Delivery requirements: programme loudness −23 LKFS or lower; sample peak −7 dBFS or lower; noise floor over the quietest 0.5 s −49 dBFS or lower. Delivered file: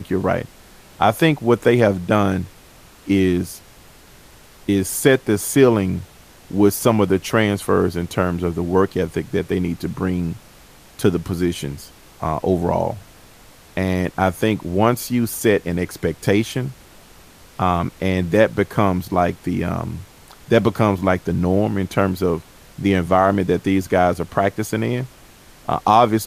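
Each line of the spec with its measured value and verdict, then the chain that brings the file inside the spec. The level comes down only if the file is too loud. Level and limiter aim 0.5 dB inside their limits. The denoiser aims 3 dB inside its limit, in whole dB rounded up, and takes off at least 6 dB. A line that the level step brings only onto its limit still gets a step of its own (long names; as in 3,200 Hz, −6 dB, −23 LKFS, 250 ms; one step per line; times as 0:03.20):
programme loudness −19.5 LKFS: out of spec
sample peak −2.0 dBFS: out of spec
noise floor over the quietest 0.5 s −46 dBFS: out of spec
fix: level −4 dB
brickwall limiter −7.5 dBFS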